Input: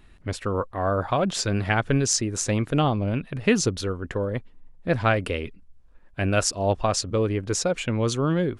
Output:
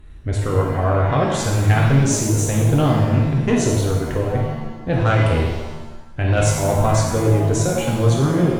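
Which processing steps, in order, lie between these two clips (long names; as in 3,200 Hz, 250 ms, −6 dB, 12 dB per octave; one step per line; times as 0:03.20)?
low-shelf EQ 260 Hz +11.5 dB
harmonic generator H 5 −17 dB, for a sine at −3 dBFS
thirty-one-band graphic EQ 200 Hz −10 dB, 2,500 Hz −4 dB, 5,000 Hz −10 dB
reverb with rising layers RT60 1.1 s, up +7 semitones, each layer −8 dB, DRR −2 dB
level −4.5 dB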